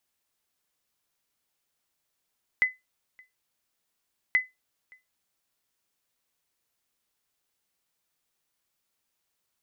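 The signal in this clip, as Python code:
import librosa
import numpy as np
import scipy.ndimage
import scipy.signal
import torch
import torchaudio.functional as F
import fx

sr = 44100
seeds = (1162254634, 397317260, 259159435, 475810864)

y = fx.sonar_ping(sr, hz=2020.0, decay_s=0.19, every_s=1.73, pings=2, echo_s=0.57, echo_db=-30.0, level_db=-14.0)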